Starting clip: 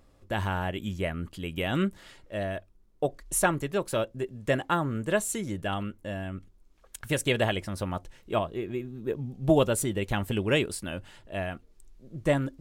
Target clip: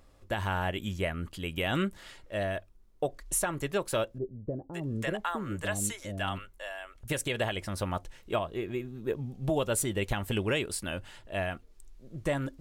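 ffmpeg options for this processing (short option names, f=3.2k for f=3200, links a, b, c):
-filter_complex "[0:a]equalizer=f=210:t=o:w=2.5:g=-4.5,alimiter=limit=-20.5dB:level=0:latency=1:release=186,asettb=1/sr,asplit=3[a][b][c];[a]atrim=end=4.184[d];[b]atrim=start=4.18:end=7.08,asetpts=PTS-STARTPTS,afade=t=in:d=0.004:c=qsin,afade=t=out:st=2.896:d=0.004:c=qsin,acrossover=split=560[e][f];[f]adelay=550[g];[e][g]amix=inputs=2:normalize=0,atrim=end_sample=127890[h];[c]atrim=start=7.076[i];[d][h]acrossfade=d=0.004:c1=hsin:c2=qsin[j];[j][i]acrossfade=d=0.004:c1=qsin:c2=hsin,volume=2dB"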